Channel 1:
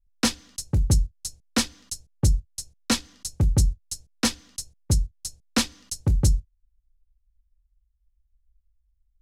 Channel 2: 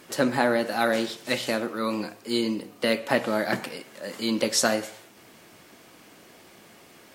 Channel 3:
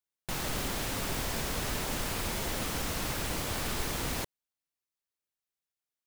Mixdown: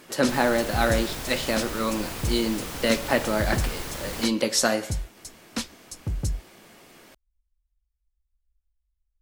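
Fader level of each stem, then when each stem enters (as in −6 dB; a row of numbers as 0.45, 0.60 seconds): −8.0, +0.5, −1.0 decibels; 0.00, 0.00, 0.00 seconds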